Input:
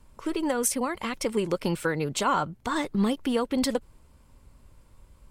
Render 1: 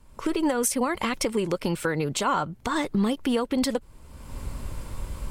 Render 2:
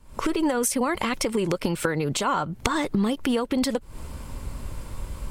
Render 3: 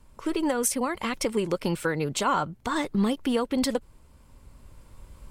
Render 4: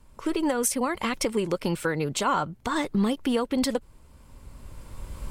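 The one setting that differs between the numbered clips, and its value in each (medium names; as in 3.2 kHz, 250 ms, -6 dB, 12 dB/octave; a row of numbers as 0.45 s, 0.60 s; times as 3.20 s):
recorder AGC, rising by: 32 dB/s, 87 dB/s, 5 dB/s, 12 dB/s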